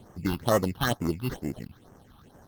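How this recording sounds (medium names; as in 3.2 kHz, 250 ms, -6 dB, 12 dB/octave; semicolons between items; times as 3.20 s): aliases and images of a low sample rate 2.4 kHz, jitter 0%; phasing stages 6, 2.2 Hz, lowest notch 500–3800 Hz; Opus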